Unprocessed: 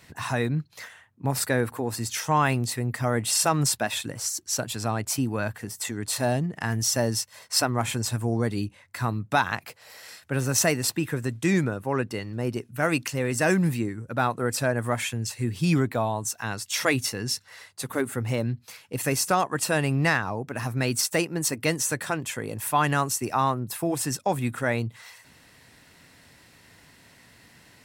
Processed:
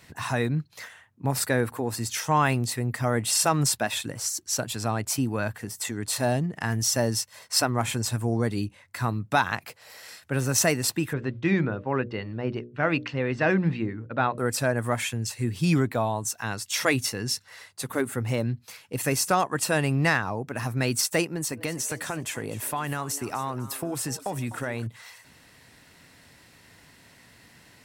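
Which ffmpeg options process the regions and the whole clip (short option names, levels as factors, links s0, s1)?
-filter_complex "[0:a]asettb=1/sr,asplit=3[s0][s1][s2];[s0]atrim=end=11.134[s3];[s1]atrim=start=11.13:end=14.38,asetpts=PTS-STARTPTS,afade=t=in:d=0.004:c=qsin,afade=t=out:st=3.246:d=0.004:c=qsin,agate=range=0.0224:threshold=0.0112:ratio=3:release=100:detection=peak,lowpass=f=3800:w=0.5412,lowpass=f=3800:w=1.3066,bandreject=f=60:t=h:w=6,bandreject=f=120:t=h:w=6,bandreject=f=180:t=h:w=6,bandreject=f=240:t=h:w=6,bandreject=f=300:t=h:w=6,bandreject=f=360:t=h:w=6,bandreject=f=420:t=h:w=6,bandreject=f=480:t=h:w=6,bandreject=f=540:t=h:w=6,bandreject=f=600:t=h:w=6[s4];[s2]atrim=start=14.376[s5];[s3][s4]acrossfade=d=0.004:c1=hsin:c2=qsin[s6];[s6][s5]acrossfade=d=0.004:c1=qsin:c2=hsin,asettb=1/sr,asplit=3[s7][s8][s9];[s7]atrim=end=21.304[s10];[s8]atrim=start=21.3:end=24.87,asetpts=PTS-STARTPTS,afade=t=in:d=0.004:c=qsin,afade=t=out:st=3.566:d=0.004:c=qsin,acompressor=threshold=0.0501:ratio=4:attack=3.2:release=140:knee=1:detection=peak,asplit=4[s11][s12][s13][s14];[s12]adelay=251,afreqshift=140,volume=0.168[s15];[s13]adelay=502,afreqshift=280,volume=0.0569[s16];[s14]adelay=753,afreqshift=420,volume=0.0195[s17];[s11][s15][s16][s17]amix=inputs=4:normalize=0,atrim=end_sample=157437[s18];[s9]atrim=start=24.866[s19];[s10][s18]acrossfade=d=0.004:c1=hsin:c2=qsin[s20];[s20][s19]acrossfade=d=0.004:c1=qsin:c2=hsin"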